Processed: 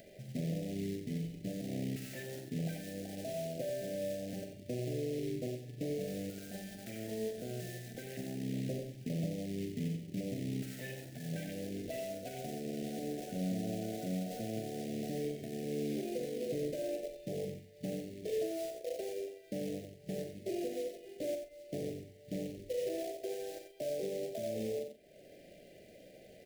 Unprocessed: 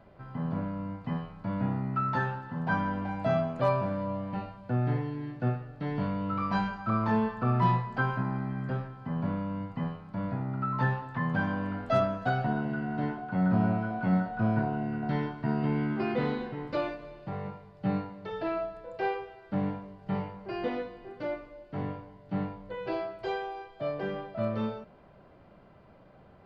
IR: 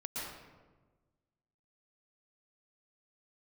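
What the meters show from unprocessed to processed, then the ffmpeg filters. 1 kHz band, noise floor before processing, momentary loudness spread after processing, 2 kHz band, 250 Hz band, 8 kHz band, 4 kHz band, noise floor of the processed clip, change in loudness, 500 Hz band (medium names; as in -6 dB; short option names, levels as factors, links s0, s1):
-20.0 dB, -55 dBFS, 7 LU, -15.5 dB, -8.0 dB, no reading, -1.0 dB, -57 dBFS, -8.0 dB, -4.0 dB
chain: -filter_complex "[0:a]afwtdn=0.0251,bass=f=250:g=-14,treble=f=4000:g=7,bandreject=f=50:t=h:w=6,bandreject=f=100:t=h:w=6,acompressor=threshold=0.00891:ratio=3,alimiter=level_in=5.01:limit=0.0631:level=0:latency=1:release=217,volume=0.2,acompressor=mode=upward:threshold=0.00251:ratio=2.5,acrusher=bits=3:mode=log:mix=0:aa=0.000001,asuperstop=centerf=1100:order=8:qfactor=0.88,asplit=2[s0][s1];[s1]adelay=43,volume=0.355[s2];[s0][s2]amix=inputs=2:normalize=0,asplit=2[s3][s4];[s4]aecho=0:1:91:0.398[s5];[s3][s5]amix=inputs=2:normalize=0,volume=2.82"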